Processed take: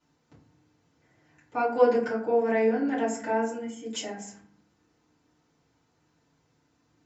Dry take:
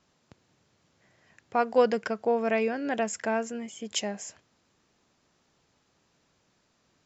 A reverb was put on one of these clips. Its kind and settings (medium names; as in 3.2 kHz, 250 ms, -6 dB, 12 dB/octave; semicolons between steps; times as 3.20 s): FDN reverb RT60 0.55 s, low-frequency decay 1.6×, high-frequency decay 0.45×, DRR -10 dB; trim -12 dB